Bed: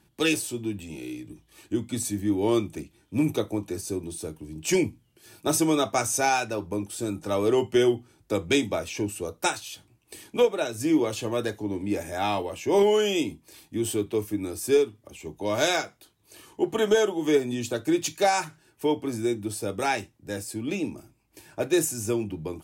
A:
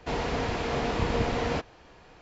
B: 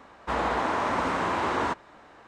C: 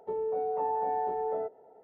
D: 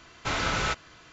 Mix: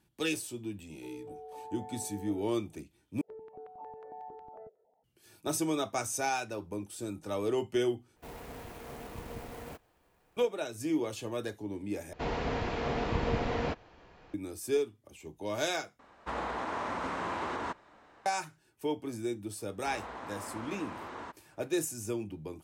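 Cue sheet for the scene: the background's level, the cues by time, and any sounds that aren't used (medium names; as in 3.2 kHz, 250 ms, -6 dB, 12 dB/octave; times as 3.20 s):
bed -8.5 dB
0.95 s: add C -15.5 dB
3.21 s: replace with C -13 dB + stepped phaser 11 Hz 270–1900 Hz
8.16 s: replace with A -16 dB + sampling jitter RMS 0.043 ms
12.13 s: replace with A -3.5 dB + treble shelf 6.2 kHz -11.5 dB
15.99 s: replace with B -7.5 dB + peak limiter -18.5 dBFS
19.58 s: add B -16.5 dB
not used: D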